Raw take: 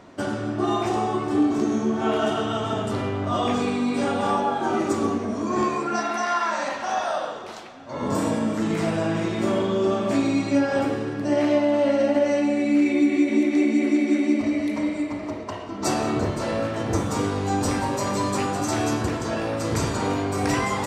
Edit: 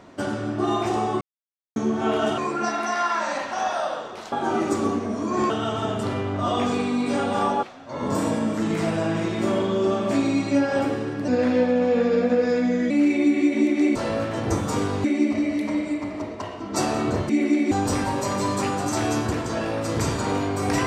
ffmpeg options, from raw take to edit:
-filter_complex "[0:a]asplit=13[a][b][c][d][e][f][g][h][i][j][k][l][m];[a]atrim=end=1.21,asetpts=PTS-STARTPTS,afade=t=out:st=1.206:d=0.004:c=hsin[n];[b]atrim=start=1.21:end=1.76,asetpts=PTS-STARTPTS,volume=0[o];[c]atrim=start=1.76:end=2.382,asetpts=PTS-STARTPTS,afade=t=in:d=0.004:c=hsin[p];[d]atrim=start=5.688:end=7.632[q];[e]atrim=start=4.508:end=5.692[r];[f]atrim=start=2.378:end=4.512[s];[g]atrim=start=7.628:end=11.284[t];[h]atrim=start=11.28:end=12.66,asetpts=PTS-STARTPTS,asetrate=37485,aresample=44100[u];[i]atrim=start=12.656:end=13.712[v];[j]atrim=start=16.378:end=17.472[w];[k]atrim=start=14.128:end=16.382[x];[l]atrim=start=13.708:end=14.132[y];[m]atrim=start=17.468[z];[n][o][p]concat=n=3:v=0:a=1[aa];[aa][q]acrossfade=d=0.004:c1=hsin:c2=hsin[ab];[ab][r]acrossfade=d=0.004:c1=hsin:c2=hsin[ac];[ac][s]acrossfade=d=0.004:c1=hsin:c2=hsin[ad];[ad][t]acrossfade=d=0.004:c1=hsin:c2=hsin[ae];[ae][u]acrossfade=d=0.004:c1=hsin:c2=hsin[af];[af][v]acrossfade=d=0.004:c1=hsin:c2=hsin[ag];[ag][w]acrossfade=d=0.004:c1=hsin:c2=hsin[ah];[ah][x]acrossfade=d=0.004:c1=hsin:c2=hsin[ai];[ai][y]acrossfade=d=0.004:c1=hsin:c2=hsin[aj];[aj][z]acrossfade=d=0.004:c1=hsin:c2=hsin"

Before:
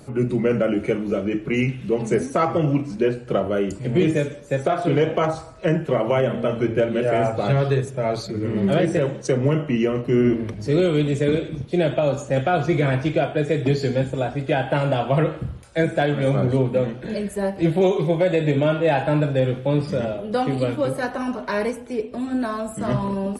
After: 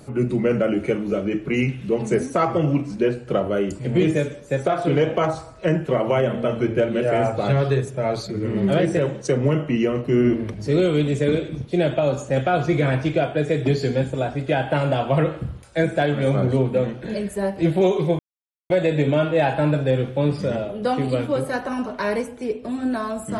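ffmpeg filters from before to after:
-filter_complex "[0:a]asplit=2[a][b];[a]atrim=end=18.19,asetpts=PTS-STARTPTS,afade=t=out:st=18.186:d=0.004:c=hsin,apad=pad_dur=0.51[c];[b]atrim=start=18.19,asetpts=PTS-STARTPTS,afade=t=in:d=0.004:c=hsin[d];[c][d]concat=n=2:v=0:a=1"

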